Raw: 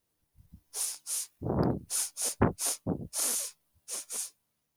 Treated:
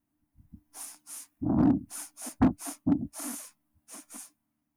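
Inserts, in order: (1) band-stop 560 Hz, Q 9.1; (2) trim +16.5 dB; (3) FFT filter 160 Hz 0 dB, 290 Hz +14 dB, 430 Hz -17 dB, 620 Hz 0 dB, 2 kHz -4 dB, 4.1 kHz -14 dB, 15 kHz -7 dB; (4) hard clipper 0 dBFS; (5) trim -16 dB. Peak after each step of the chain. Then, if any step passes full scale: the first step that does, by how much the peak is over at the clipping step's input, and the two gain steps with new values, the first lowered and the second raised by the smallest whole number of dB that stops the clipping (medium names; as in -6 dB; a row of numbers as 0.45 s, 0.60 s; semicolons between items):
-9.5 dBFS, +7.0 dBFS, +9.5 dBFS, 0.0 dBFS, -16.0 dBFS; step 2, 9.5 dB; step 2 +6.5 dB, step 5 -6 dB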